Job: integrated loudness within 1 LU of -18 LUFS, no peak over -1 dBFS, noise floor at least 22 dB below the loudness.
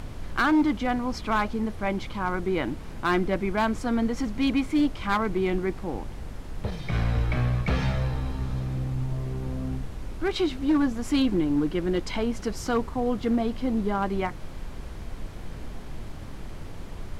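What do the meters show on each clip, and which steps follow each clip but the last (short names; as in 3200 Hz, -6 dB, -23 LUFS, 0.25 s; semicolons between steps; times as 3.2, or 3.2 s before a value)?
clipped 0.8%; flat tops at -17.0 dBFS; noise floor -38 dBFS; noise floor target -49 dBFS; loudness -27.0 LUFS; peak -17.0 dBFS; loudness target -18.0 LUFS
-> clip repair -17 dBFS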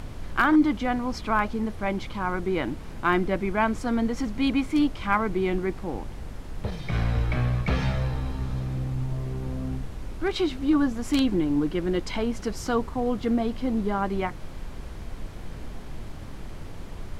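clipped 0.0%; noise floor -38 dBFS; noise floor target -49 dBFS
-> noise print and reduce 11 dB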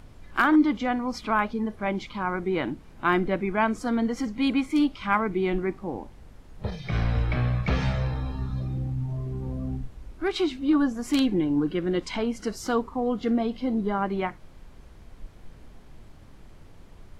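noise floor -49 dBFS; loudness -27.0 LUFS; peak -8.0 dBFS; loudness target -18.0 LUFS
-> gain +9 dB; limiter -1 dBFS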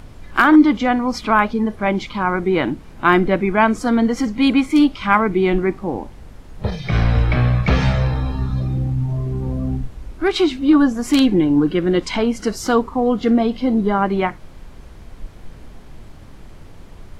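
loudness -18.0 LUFS; peak -1.0 dBFS; noise floor -40 dBFS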